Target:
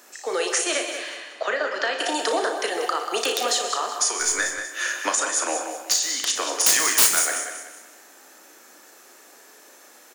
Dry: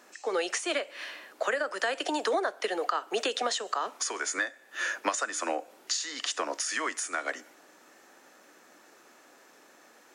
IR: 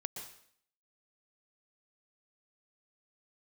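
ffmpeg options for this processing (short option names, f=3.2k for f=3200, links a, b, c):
-filter_complex "[0:a]asettb=1/sr,asplit=3[a][b][c];[a]atrim=end=0.974[d];[b]atrim=start=0.97:end=1.99,asetpts=PTS-STARTPTS,afade=t=in:d=0.004:c=qsin,afade=t=out:st=1.016:d=0.004:c=qsin,lowpass=f=5k:w=0.5412,lowpass=f=5k:w=1.3066[e];[c]atrim=start=1.986[f];[d][e]acrossfade=d=0.004:c1=hsin:c2=qsin[g];[g][f]acrossfade=d=0.004:c1=qsin:c2=hsin,asettb=1/sr,asplit=3[h][i][j];[h]atrim=end=6.664[k];[i]atrim=start=6.66:end=7.2,asetpts=PTS-STARTPTS,afade=t=in:d=0.004:c=qsin,afade=t=out:st=0.536:d=0.004:c=qsin,highshelf=f=3.7k:g=11.5[l];[j]atrim=start=7.196[m];[k][l]acrossfade=d=0.004:c1=hsin:c2=qsin[n];[n][m]acrossfade=d=0.004:c1=qsin:c2=hsin,asplit=2[o][p];[p]aecho=0:1:188|376|564|752:0.335|0.121|0.0434|0.0156[q];[o][q]amix=inputs=2:normalize=0,crystalizer=i=2:c=0,aeval=exprs='(mod(3.76*val(0)+1,2)-1)/3.76':c=same,asplit=2[r][s];[s]highpass=240[t];[1:a]atrim=start_sample=2205,lowshelf=f=240:g=6[u];[t][u]afir=irnorm=-1:irlink=0,volume=4.5dB[v];[r][v]amix=inputs=2:normalize=0,asettb=1/sr,asplit=3[w][x][y];[w]atrim=end=4.194[z];[x]atrim=start=4.19:end=4.62,asetpts=PTS-STARTPTS,afade=t=in:d=0.004:c=qsin,afade=t=out:st=0.426:d=0.004:c=qsin,aeval=exprs='0.531*(cos(1*acos(clip(val(0)/0.531,-1,1)))-cos(1*PI/2))+0.0119*(cos(8*acos(clip(val(0)/0.531,-1,1)))-cos(8*PI/2))':c=same[aa];[y]atrim=start=4.616[ab];[z][aa]acrossfade=d=0.004:c1=hsin:c2=qsin[ac];[ac][ab]acrossfade=d=0.004:c1=qsin:c2=hsin,aecho=1:1:34|59:0.398|0.251,volume=-5dB"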